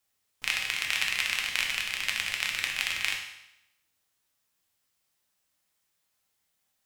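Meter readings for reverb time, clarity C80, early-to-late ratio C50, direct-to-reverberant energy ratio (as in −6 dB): 0.85 s, 7.5 dB, 5.0 dB, −0.5 dB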